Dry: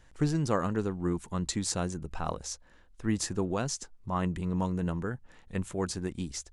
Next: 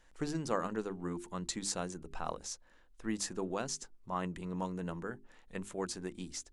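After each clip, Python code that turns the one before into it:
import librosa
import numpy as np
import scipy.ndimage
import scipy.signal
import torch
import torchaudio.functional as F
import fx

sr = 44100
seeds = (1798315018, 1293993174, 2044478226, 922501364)

y = fx.peak_eq(x, sr, hz=100.0, db=-14.0, octaves=1.1)
y = fx.hum_notches(y, sr, base_hz=50, count=8)
y = y * 10.0 ** (-4.0 / 20.0)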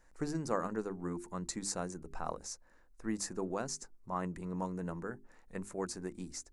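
y = fx.peak_eq(x, sr, hz=3200.0, db=-13.5, octaves=0.63)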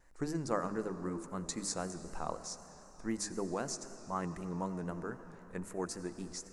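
y = fx.rev_freeverb(x, sr, rt60_s=4.3, hf_ratio=0.9, predelay_ms=45, drr_db=11.0)
y = fx.vibrato(y, sr, rate_hz=3.9, depth_cents=74.0)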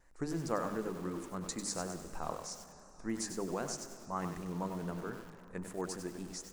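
y = fx.echo_crushed(x, sr, ms=97, feedback_pct=35, bits=8, wet_db=-7)
y = y * 10.0 ** (-1.0 / 20.0)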